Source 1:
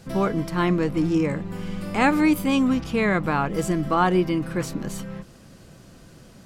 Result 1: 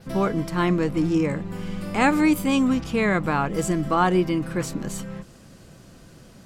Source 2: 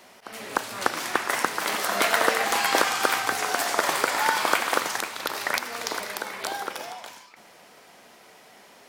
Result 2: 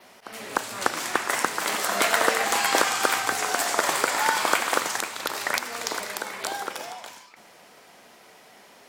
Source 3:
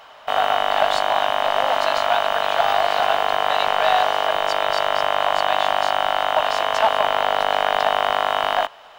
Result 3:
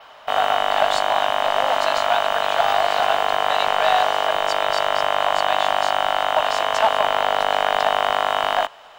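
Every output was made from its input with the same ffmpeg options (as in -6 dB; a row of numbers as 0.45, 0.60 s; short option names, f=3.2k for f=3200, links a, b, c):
-af "adynamicequalizer=threshold=0.00355:dfrequency=7600:dqfactor=2.6:tfrequency=7600:tqfactor=2.6:attack=5:release=100:ratio=0.375:range=2.5:mode=boostabove:tftype=bell"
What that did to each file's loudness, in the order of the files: 0.0, +0.5, 0.0 LU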